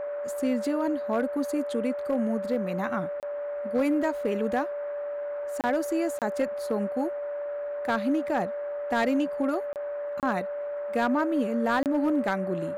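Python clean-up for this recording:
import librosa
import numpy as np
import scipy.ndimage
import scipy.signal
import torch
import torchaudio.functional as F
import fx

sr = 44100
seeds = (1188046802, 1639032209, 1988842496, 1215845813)

y = fx.fix_declip(x, sr, threshold_db=-18.5)
y = fx.notch(y, sr, hz=580.0, q=30.0)
y = fx.fix_interpolate(y, sr, at_s=(3.2, 5.61, 6.19, 9.73, 10.2, 11.83), length_ms=28.0)
y = fx.noise_reduce(y, sr, print_start_s=10.44, print_end_s=10.94, reduce_db=30.0)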